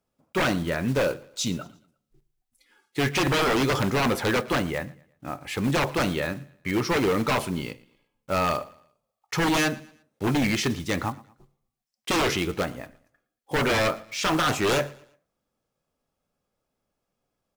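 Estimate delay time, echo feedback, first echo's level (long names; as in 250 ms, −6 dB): 115 ms, 37%, −22.0 dB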